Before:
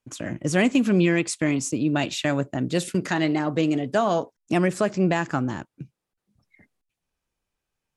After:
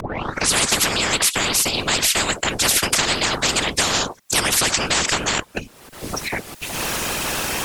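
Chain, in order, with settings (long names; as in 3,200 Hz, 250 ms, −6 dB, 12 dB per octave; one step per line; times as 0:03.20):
turntable start at the beginning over 0.56 s
high-pass filter 89 Hz
upward compression, threshold −27 dBFS
random phases in short frames
wrong playback speed 24 fps film run at 25 fps
every bin compressed towards the loudest bin 10 to 1
level +3 dB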